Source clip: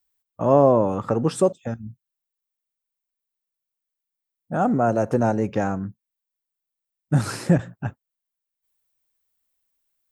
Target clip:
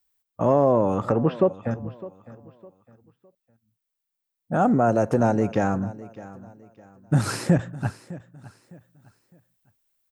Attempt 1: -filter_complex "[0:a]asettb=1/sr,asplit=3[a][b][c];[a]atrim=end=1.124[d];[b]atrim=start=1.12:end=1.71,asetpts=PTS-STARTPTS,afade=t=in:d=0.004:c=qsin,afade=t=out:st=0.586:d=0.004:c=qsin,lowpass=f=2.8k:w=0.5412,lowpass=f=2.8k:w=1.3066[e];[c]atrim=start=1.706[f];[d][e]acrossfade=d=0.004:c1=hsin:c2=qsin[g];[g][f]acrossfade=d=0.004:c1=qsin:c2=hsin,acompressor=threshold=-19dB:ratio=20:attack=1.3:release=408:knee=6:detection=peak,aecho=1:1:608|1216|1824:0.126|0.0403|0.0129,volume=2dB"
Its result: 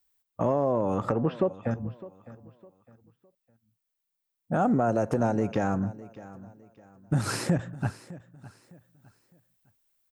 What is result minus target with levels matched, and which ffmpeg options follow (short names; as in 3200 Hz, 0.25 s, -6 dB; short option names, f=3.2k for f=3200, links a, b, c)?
compressor: peak gain reduction +7 dB
-filter_complex "[0:a]asettb=1/sr,asplit=3[a][b][c];[a]atrim=end=1.124[d];[b]atrim=start=1.12:end=1.71,asetpts=PTS-STARTPTS,afade=t=in:d=0.004:c=qsin,afade=t=out:st=0.586:d=0.004:c=qsin,lowpass=f=2.8k:w=0.5412,lowpass=f=2.8k:w=1.3066[e];[c]atrim=start=1.706[f];[d][e]acrossfade=d=0.004:c1=hsin:c2=qsin[g];[g][f]acrossfade=d=0.004:c1=qsin:c2=hsin,acompressor=threshold=-11.5dB:ratio=20:attack=1.3:release=408:knee=6:detection=peak,aecho=1:1:608|1216|1824:0.126|0.0403|0.0129,volume=2dB"